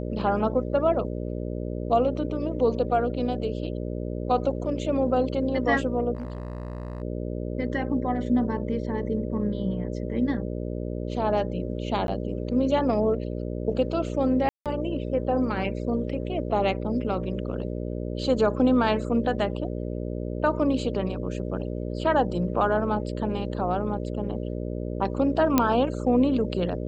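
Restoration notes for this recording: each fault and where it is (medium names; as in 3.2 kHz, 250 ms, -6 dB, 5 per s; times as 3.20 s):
buzz 60 Hz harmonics 10 -31 dBFS
6.15–7.02 s: clipped -29 dBFS
12.07–12.08 s: dropout 11 ms
14.49–14.66 s: dropout 167 ms
25.58 s: pop -5 dBFS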